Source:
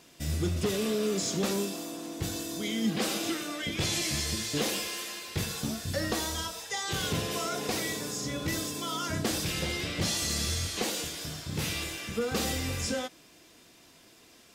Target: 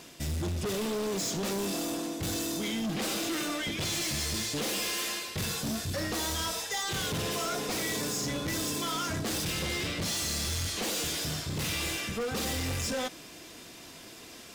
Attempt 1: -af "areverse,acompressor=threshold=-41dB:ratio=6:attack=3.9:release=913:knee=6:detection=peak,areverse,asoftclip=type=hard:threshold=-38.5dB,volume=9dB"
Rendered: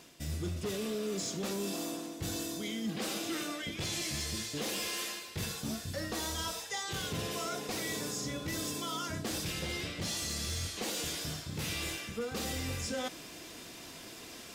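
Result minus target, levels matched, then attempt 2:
downward compressor: peak gain reduction +8 dB
-af "areverse,acompressor=threshold=-31.5dB:ratio=6:attack=3.9:release=913:knee=6:detection=peak,areverse,asoftclip=type=hard:threshold=-38.5dB,volume=9dB"

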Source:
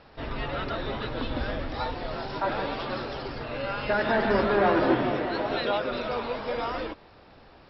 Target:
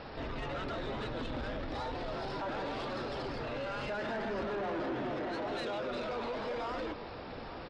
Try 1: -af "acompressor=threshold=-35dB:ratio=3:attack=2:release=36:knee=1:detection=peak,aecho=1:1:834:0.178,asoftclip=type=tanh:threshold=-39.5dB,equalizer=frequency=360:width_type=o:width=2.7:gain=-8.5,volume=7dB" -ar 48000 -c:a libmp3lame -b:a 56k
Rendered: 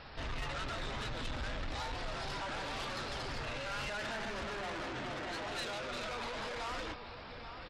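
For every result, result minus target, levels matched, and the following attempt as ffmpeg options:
downward compressor: peak gain reduction −7 dB; 500 Hz band −4.5 dB
-af "acompressor=threshold=-45.5dB:ratio=3:attack=2:release=36:knee=1:detection=peak,aecho=1:1:834:0.178,asoftclip=type=tanh:threshold=-39.5dB,equalizer=frequency=360:width_type=o:width=2.7:gain=-8.5,volume=7dB" -ar 48000 -c:a libmp3lame -b:a 56k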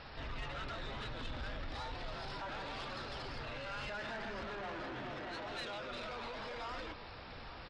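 500 Hz band −4.0 dB
-af "acompressor=threshold=-45.5dB:ratio=3:attack=2:release=36:knee=1:detection=peak,aecho=1:1:834:0.178,asoftclip=type=tanh:threshold=-39.5dB,equalizer=frequency=360:width_type=o:width=2.7:gain=2.5,volume=7dB" -ar 48000 -c:a libmp3lame -b:a 56k

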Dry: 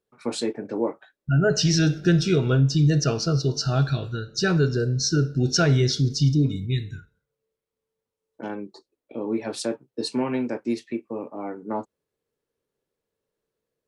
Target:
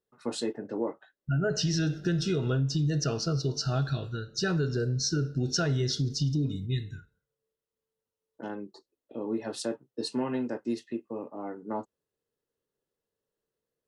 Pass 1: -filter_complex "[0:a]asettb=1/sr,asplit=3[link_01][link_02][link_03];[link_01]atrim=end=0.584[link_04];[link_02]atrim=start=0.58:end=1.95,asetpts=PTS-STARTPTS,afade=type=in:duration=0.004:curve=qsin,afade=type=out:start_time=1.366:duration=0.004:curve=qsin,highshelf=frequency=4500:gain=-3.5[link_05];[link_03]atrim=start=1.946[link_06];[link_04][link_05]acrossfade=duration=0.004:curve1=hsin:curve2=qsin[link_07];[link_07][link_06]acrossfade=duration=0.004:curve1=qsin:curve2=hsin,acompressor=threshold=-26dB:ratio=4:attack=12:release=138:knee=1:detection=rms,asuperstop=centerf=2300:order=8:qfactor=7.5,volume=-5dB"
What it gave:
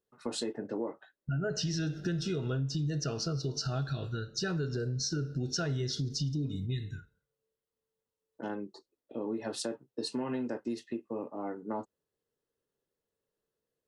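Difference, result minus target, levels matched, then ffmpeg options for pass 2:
downward compressor: peak gain reduction +5.5 dB
-filter_complex "[0:a]asettb=1/sr,asplit=3[link_01][link_02][link_03];[link_01]atrim=end=0.584[link_04];[link_02]atrim=start=0.58:end=1.95,asetpts=PTS-STARTPTS,afade=type=in:duration=0.004:curve=qsin,afade=type=out:start_time=1.366:duration=0.004:curve=qsin,highshelf=frequency=4500:gain=-3.5[link_05];[link_03]atrim=start=1.946[link_06];[link_04][link_05]acrossfade=duration=0.004:curve1=hsin:curve2=qsin[link_07];[link_07][link_06]acrossfade=duration=0.004:curve1=qsin:curve2=hsin,acompressor=threshold=-19dB:ratio=4:attack=12:release=138:knee=1:detection=rms,asuperstop=centerf=2300:order=8:qfactor=7.5,volume=-5dB"

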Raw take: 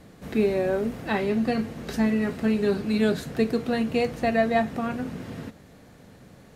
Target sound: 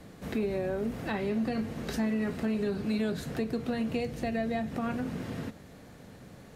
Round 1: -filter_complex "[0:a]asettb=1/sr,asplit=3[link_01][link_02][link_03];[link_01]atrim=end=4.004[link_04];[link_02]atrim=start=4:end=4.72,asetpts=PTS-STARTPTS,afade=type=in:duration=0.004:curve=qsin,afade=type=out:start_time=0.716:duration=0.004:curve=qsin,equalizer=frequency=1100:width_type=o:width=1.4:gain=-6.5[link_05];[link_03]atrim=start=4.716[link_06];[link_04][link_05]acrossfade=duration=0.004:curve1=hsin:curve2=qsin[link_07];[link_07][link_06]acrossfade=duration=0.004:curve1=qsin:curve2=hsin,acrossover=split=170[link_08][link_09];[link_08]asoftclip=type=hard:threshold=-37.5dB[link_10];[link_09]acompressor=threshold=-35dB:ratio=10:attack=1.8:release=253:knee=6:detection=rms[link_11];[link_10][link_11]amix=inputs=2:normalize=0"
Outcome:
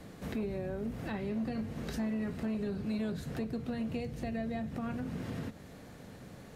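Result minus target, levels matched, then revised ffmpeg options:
downward compressor: peak gain reduction +7.5 dB
-filter_complex "[0:a]asettb=1/sr,asplit=3[link_01][link_02][link_03];[link_01]atrim=end=4.004[link_04];[link_02]atrim=start=4:end=4.72,asetpts=PTS-STARTPTS,afade=type=in:duration=0.004:curve=qsin,afade=type=out:start_time=0.716:duration=0.004:curve=qsin,equalizer=frequency=1100:width_type=o:width=1.4:gain=-6.5[link_05];[link_03]atrim=start=4.716[link_06];[link_04][link_05]acrossfade=duration=0.004:curve1=hsin:curve2=qsin[link_07];[link_07][link_06]acrossfade=duration=0.004:curve1=qsin:curve2=hsin,acrossover=split=170[link_08][link_09];[link_08]asoftclip=type=hard:threshold=-37.5dB[link_10];[link_09]acompressor=threshold=-26.5dB:ratio=10:attack=1.8:release=253:knee=6:detection=rms[link_11];[link_10][link_11]amix=inputs=2:normalize=0"

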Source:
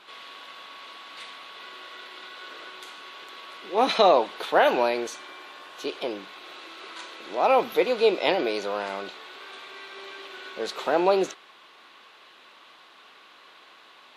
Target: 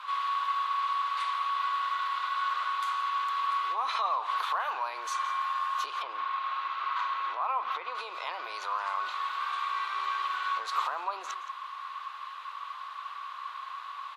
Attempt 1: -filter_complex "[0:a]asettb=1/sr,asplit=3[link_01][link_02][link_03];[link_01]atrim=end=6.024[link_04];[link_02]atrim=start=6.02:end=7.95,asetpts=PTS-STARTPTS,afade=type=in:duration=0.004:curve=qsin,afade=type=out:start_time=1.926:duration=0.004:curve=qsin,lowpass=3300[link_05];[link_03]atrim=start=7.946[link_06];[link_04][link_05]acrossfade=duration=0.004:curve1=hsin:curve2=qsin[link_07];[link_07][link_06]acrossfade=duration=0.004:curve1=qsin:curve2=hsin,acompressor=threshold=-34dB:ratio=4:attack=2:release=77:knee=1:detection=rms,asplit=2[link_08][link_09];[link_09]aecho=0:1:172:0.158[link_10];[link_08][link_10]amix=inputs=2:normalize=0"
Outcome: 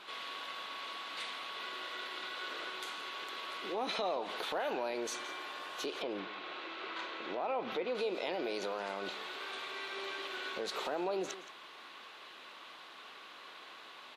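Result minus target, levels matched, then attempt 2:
1,000 Hz band −6.5 dB
-filter_complex "[0:a]asettb=1/sr,asplit=3[link_01][link_02][link_03];[link_01]atrim=end=6.024[link_04];[link_02]atrim=start=6.02:end=7.95,asetpts=PTS-STARTPTS,afade=type=in:duration=0.004:curve=qsin,afade=type=out:start_time=1.926:duration=0.004:curve=qsin,lowpass=3300[link_05];[link_03]atrim=start=7.946[link_06];[link_04][link_05]acrossfade=duration=0.004:curve1=hsin:curve2=qsin[link_07];[link_07][link_06]acrossfade=duration=0.004:curve1=qsin:curve2=hsin,acompressor=threshold=-34dB:ratio=4:attack=2:release=77:knee=1:detection=rms,highpass=frequency=1100:width_type=q:width=8.9,asplit=2[link_08][link_09];[link_09]aecho=0:1:172:0.158[link_10];[link_08][link_10]amix=inputs=2:normalize=0"

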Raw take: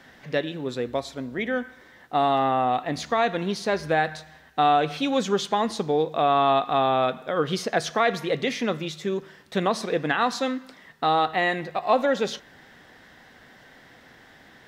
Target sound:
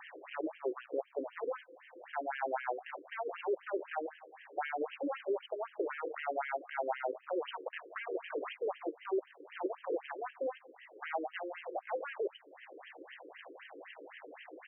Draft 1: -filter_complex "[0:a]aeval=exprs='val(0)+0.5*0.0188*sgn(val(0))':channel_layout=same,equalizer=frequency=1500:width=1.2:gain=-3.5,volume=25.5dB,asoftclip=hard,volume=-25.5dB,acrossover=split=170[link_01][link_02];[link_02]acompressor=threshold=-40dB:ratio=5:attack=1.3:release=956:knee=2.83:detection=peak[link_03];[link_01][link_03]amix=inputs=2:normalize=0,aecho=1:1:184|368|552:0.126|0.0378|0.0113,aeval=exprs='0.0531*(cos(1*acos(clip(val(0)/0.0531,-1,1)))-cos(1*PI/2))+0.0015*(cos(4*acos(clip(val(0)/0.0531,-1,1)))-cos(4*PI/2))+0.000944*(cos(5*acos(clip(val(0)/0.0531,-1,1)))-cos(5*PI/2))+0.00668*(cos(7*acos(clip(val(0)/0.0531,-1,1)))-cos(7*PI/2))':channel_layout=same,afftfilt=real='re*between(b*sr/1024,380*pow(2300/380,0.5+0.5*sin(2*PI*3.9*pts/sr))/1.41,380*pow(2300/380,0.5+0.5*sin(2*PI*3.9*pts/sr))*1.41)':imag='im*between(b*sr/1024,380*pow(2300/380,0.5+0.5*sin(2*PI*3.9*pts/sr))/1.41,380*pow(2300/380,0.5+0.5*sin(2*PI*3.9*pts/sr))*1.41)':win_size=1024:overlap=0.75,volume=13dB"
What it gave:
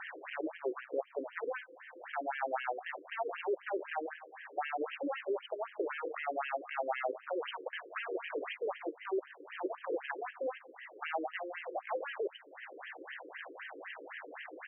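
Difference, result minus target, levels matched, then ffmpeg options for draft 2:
2,000 Hz band +3.0 dB
-filter_complex "[0:a]aeval=exprs='val(0)+0.5*0.0188*sgn(val(0))':channel_layout=same,equalizer=frequency=1500:width=1.2:gain=-15,volume=25.5dB,asoftclip=hard,volume=-25.5dB,acrossover=split=170[link_01][link_02];[link_02]acompressor=threshold=-40dB:ratio=5:attack=1.3:release=956:knee=2.83:detection=peak[link_03];[link_01][link_03]amix=inputs=2:normalize=0,aecho=1:1:184|368|552:0.126|0.0378|0.0113,aeval=exprs='0.0531*(cos(1*acos(clip(val(0)/0.0531,-1,1)))-cos(1*PI/2))+0.0015*(cos(4*acos(clip(val(0)/0.0531,-1,1)))-cos(4*PI/2))+0.000944*(cos(5*acos(clip(val(0)/0.0531,-1,1)))-cos(5*PI/2))+0.00668*(cos(7*acos(clip(val(0)/0.0531,-1,1)))-cos(7*PI/2))':channel_layout=same,afftfilt=real='re*between(b*sr/1024,380*pow(2300/380,0.5+0.5*sin(2*PI*3.9*pts/sr))/1.41,380*pow(2300/380,0.5+0.5*sin(2*PI*3.9*pts/sr))*1.41)':imag='im*between(b*sr/1024,380*pow(2300/380,0.5+0.5*sin(2*PI*3.9*pts/sr))/1.41,380*pow(2300/380,0.5+0.5*sin(2*PI*3.9*pts/sr))*1.41)':win_size=1024:overlap=0.75,volume=13dB"

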